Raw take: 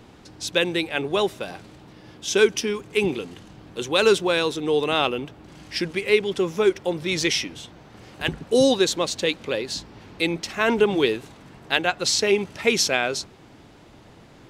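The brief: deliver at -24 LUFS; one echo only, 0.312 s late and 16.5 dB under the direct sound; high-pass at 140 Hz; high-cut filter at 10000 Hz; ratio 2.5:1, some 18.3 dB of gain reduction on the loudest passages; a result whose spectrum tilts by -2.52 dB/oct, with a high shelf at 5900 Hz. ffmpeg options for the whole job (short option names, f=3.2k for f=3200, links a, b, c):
-af "highpass=140,lowpass=10k,highshelf=f=5.9k:g=7.5,acompressor=threshold=-42dB:ratio=2.5,aecho=1:1:312:0.15,volume=14dB"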